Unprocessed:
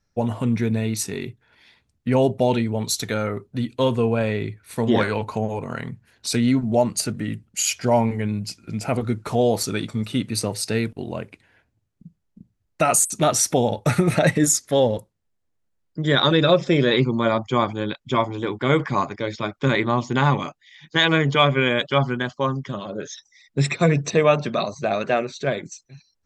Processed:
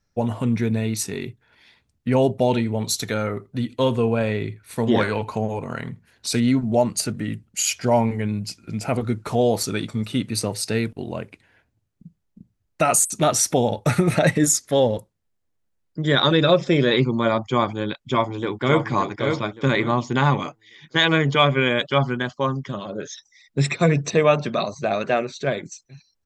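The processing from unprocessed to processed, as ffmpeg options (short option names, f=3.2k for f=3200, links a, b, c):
-filter_complex "[0:a]asettb=1/sr,asplit=3[a][b][c];[a]atrim=end=2.464[d];[b]atrim=start=2.46:end=6.4,asetpts=PTS-STARTPTS,afade=t=in:d=0.004:c=qsin,afade=t=out:st=3.936:d=0.004:c=qsin,aecho=1:1:83:0.0708,atrim=end_sample=173754[e];[c]atrim=start=6.396[f];[d][e]acrossfade=d=0.004:c1=hsin:c2=qsin[g];[g][f]acrossfade=d=0.004:c1=qsin:c2=hsin,asplit=2[h][i];[i]afade=t=in:st=18.04:d=0.01,afade=t=out:st=18.84:d=0.01,aecho=0:1:570|1140|1710|2280:0.501187|0.150356|0.0451069|0.0135321[j];[h][j]amix=inputs=2:normalize=0"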